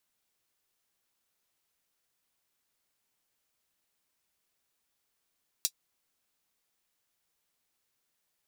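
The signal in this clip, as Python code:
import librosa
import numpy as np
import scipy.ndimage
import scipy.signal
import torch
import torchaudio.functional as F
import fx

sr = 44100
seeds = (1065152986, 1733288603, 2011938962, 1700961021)

y = fx.drum_hat(sr, length_s=0.24, from_hz=4500.0, decay_s=0.07)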